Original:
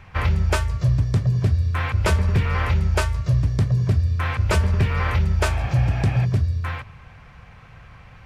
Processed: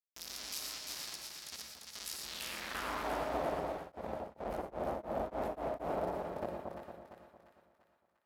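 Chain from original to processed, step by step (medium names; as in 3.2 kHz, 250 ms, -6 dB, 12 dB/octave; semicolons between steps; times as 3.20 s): inverse Chebyshev band-stop 150–5300 Hz, stop band 60 dB; treble shelf 3.4 kHz +5.5 dB; peak limiter -30 dBFS, peak gain reduction 6.5 dB; word length cut 6-bit, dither none; band-pass sweep 5.2 kHz -> 670 Hz, 2.19–3.15 s; two-band feedback delay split 1.2 kHz, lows 228 ms, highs 346 ms, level -4 dB; gated-style reverb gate 140 ms rising, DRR 3 dB; 3.59–5.87 s: tremolo of two beating tones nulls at 1.9 Hz -> 4.7 Hz; trim +12.5 dB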